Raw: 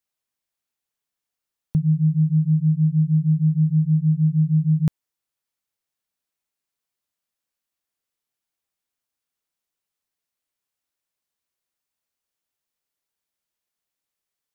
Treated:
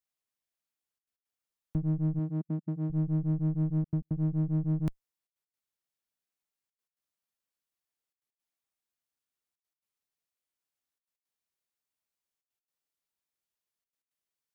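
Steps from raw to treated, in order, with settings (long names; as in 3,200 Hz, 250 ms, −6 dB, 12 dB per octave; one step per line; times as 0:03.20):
one-sided soft clipper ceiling −29 dBFS
gate pattern "xxxxxxxxxxx.x.xx" 168 BPM −60 dB
0:02.19–0:02.90: linear-phase brick-wall high-pass 150 Hz
level −6.5 dB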